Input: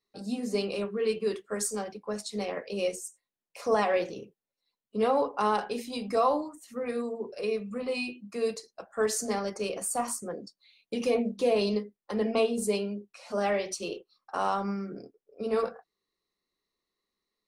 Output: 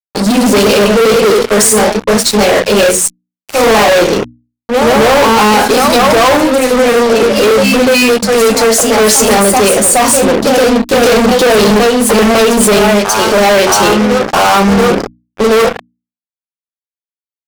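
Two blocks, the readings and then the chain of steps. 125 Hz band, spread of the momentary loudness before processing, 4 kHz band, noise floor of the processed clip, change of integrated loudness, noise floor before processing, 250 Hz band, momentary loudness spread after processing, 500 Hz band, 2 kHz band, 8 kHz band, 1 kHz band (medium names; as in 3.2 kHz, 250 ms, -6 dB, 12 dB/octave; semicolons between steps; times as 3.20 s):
no reading, 12 LU, +27.0 dB, under -85 dBFS, +22.5 dB, under -85 dBFS, +23.0 dB, 4 LU, +21.5 dB, +26.5 dB, +26.0 dB, +22.0 dB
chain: ever faster or slower copies 139 ms, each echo +1 st, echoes 2, each echo -6 dB; fuzz box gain 41 dB, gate -45 dBFS; hum notches 60/120/180/240/300 Hz; trim +7.5 dB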